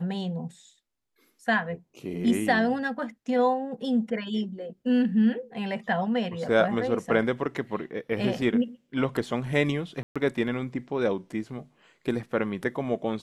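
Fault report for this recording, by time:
10.03–10.16 gap 0.126 s

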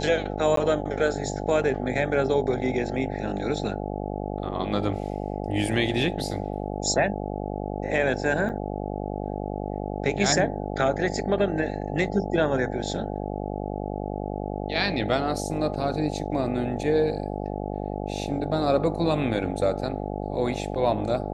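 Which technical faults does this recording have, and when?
buzz 50 Hz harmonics 17 -31 dBFS
0.56–0.57 gap 13 ms
8.49–8.5 gap 7.6 ms

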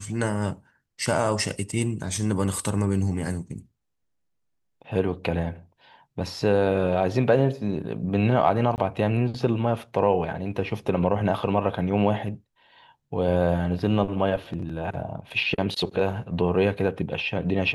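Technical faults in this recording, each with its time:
8.76–8.78 gap 19 ms

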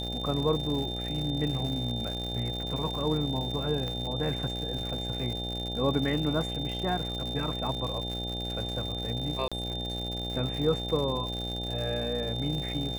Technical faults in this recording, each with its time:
buzz 60 Hz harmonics 14 -36 dBFS
crackle 180/s -34 dBFS
tone 3600 Hz -35 dBFS
3.88 pop -22 dBFS
9.48–9.52 gap 36 ms

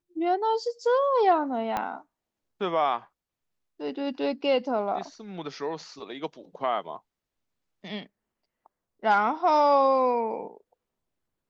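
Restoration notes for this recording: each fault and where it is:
1.77 pop -15 dBFS

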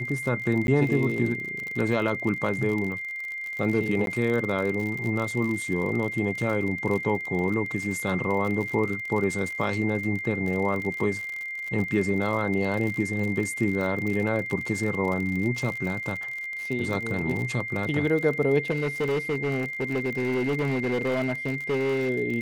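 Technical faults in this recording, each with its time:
crackle 52/s -30 dBFS
tone 2100 Hz -31 dBFS
0.67–0.68 gap
4.06–4.07 gap 12 ms
18.7–22.1 clipped -22 dBFS

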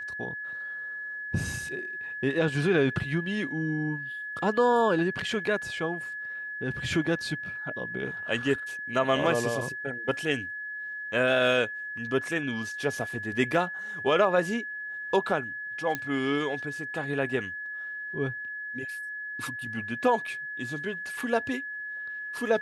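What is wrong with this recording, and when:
tone 1700 Hz -34 dBFS
15.95 pop -15 dBFS

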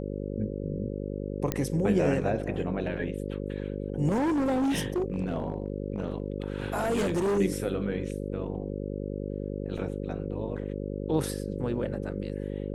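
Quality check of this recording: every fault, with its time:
buzz 50 Hz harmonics 11 -34 dBFS
1.52 pop -13 dBFS
4.1–7.39 clipped -23.5 dBFS
9.78 gap 3.7 ms

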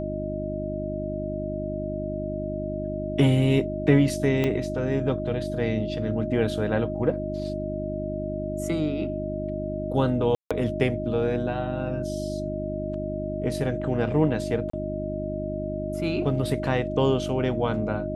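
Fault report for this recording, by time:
hum 50 Hz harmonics 7 -32 dBFS
tone 620 Hz -31 dBFS
4.44 gap 2.6 ms
10.35–10.51 gap 0.156 s
14.7–14.73 gap 34 ms

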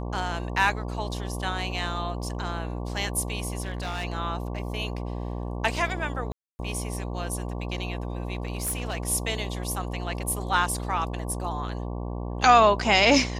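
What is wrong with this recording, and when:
buzz 60 Hz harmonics 19 -32 dBFS
3.61–4.05 clipped -27 dBFS
6.32–6.59 gap 0.27 s
8.35–9 clipped -24.5 dBFS

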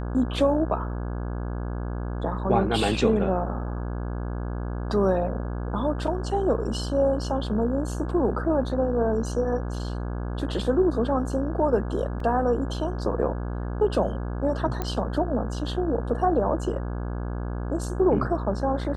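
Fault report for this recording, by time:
buzz 60 Hz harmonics 28 -30 dBFS
12.2 gap 3.2 ms
14.82 pop -14 dBFS

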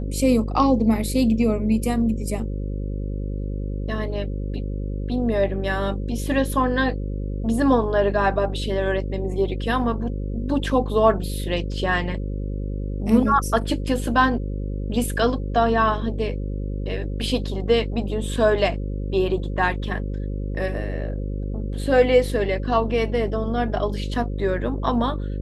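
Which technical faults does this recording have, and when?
buzz 50 Hz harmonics 11 -27 dBFS

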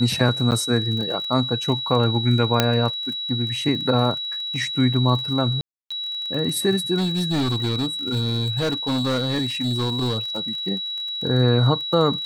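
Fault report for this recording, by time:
crackle 27/s -28 dBFS
tone 3900 Hz -26 dBFS
0.51–0.52 gap 9 ms
2.6 pop -1 dBFS
5.61–5.91 gap 0.295 s
6.97–10.4 clipped -18.5 dBFS

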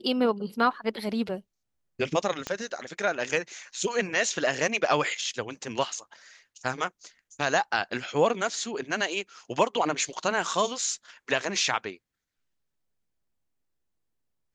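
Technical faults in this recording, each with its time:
2.47 pop -16 dBFS

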